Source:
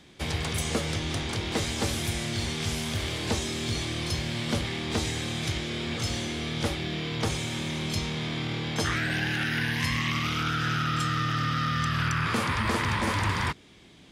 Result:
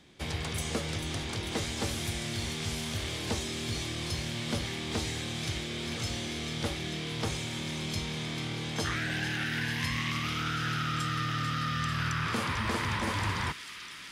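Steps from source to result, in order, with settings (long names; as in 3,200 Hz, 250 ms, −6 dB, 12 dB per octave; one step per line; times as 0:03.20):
delay with a high-pass on its return 443 ms, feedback 85%, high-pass 2,400 Hz, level −9 dB
level −4.5 dB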